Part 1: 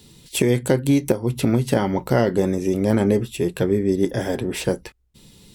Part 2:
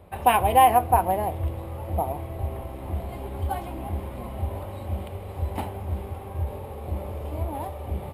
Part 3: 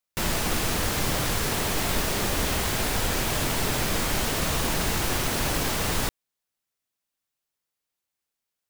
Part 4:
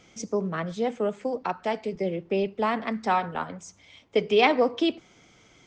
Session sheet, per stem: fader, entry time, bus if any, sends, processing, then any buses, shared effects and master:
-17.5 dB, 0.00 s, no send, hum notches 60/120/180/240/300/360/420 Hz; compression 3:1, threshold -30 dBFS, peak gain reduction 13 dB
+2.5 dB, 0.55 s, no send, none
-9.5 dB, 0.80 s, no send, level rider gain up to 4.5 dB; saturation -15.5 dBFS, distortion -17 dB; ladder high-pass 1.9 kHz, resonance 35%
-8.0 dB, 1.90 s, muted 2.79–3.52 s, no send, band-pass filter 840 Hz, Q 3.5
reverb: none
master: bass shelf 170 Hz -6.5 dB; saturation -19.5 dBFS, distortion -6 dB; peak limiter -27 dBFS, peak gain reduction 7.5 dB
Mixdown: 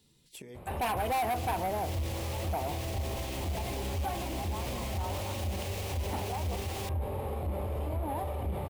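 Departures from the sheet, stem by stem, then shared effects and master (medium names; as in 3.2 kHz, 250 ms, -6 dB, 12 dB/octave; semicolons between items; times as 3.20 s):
stem 3: missing saturation -15.5 dBFS, distortion -17 dB; master: missing bass shelf 170 Hz -6.5 dB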